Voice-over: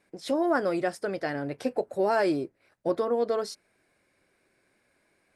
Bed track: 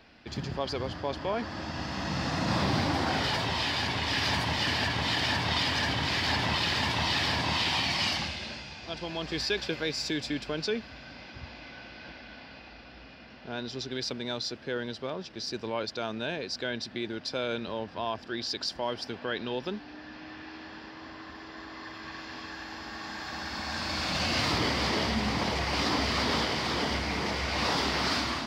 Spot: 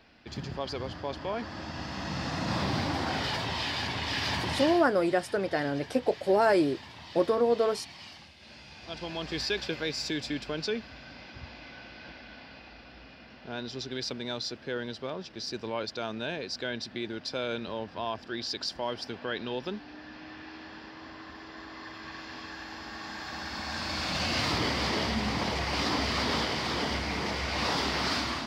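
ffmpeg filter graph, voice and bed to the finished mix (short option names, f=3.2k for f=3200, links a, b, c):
-filter_complex "[0:a]adelay=4300,volume=1.5dB[a];[1:a]volume=15dB,afade=t=out:st=4.57:d=0.29:silence=0.158489,afade=t=in:st=8.37:d=0.67:silence=0.133352[b];[a][b]amix=inputs=2:normalize=0"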